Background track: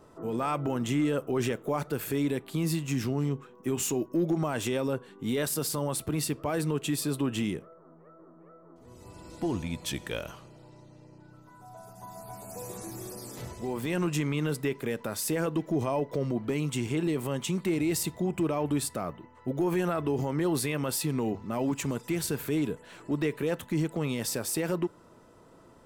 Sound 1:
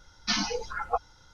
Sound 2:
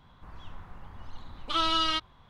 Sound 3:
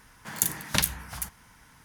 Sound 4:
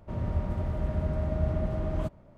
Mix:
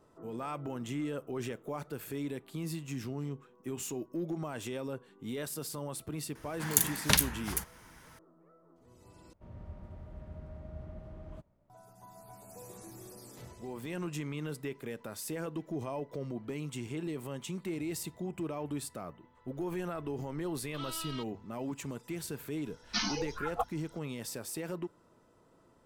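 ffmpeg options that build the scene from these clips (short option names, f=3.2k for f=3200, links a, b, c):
-filter_complex "[0:a]volume=-9dB,asplit=2[a][b];[a]atrim=end=9.334[c];[4:a]atrim=end=2.37,asetpts=PTS-STARTPTS,volume=-17dB[d];[b]atrim=start=11.696[e];[3:a]atrim=end=1.84,asetpts=PTS-STARTPTS,volume=-0.5dB,afade=t=in:d=0.004:c=hsin,afade=t=out:st=1.836:d=0.004:c=hsin,adelay=6350[f];[2:a]atrim=end=2.29,asetpts=PTS-STARTPTS,volume=-17dB,afade=t=in:d=0.004:c=hsin,afade=t=out:st=2.286:d=0.004:c=hsin,adelay=848484S[g];[1:a]atrim=end=1.33,asetpts=PTS-STARTPTS,volume=-5dB,afade=t=in:d=0.004:c=hsin,afade=t=out:st=1.326:d=0.004:c=hsin,adelay=22660[h];[c][d]acrossfade=d=0.004:c1=hsin:c2=hsin[i];[i][e]acrossfade=d=0.004:c1=hsin:c2=hsin[j];[j][f][g][h]amix=inputs=4:normalize=0"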